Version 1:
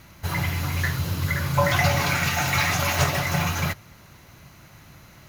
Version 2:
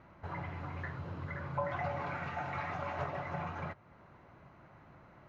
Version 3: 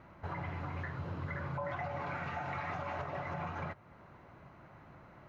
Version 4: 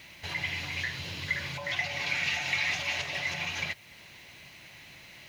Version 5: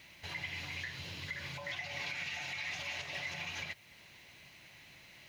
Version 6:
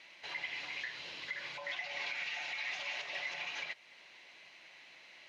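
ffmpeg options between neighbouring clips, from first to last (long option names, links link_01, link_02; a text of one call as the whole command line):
ffmpeg -i in.wav -af "lowpass=1100,lowshelf=frequency=240:gain=-12,acompressor=threshold=-46dB:ratio=1.5,volume=-1.5dB" out.wav
ffmpeg -i in.wav -af "alimiter=level_in=7.5dB:limit=-24dB:level=0:latency=1:release=149,volume=-7.5dB,volume=2dB" out.wav
ffmpeg -i in.wav -af "aexciter=amount=12.1:drive=8.9:freq=2100,volume=-2dB" out.wav
ffmpeg -i in.wav -af "alimiter=limit=-23.5dB:level=0:latency=1:release=140,volume=-6.5dB" out.wav
ffmpeg -i in.wav -af "highpass=410,lowpass=5100,volume=1dB" out.wav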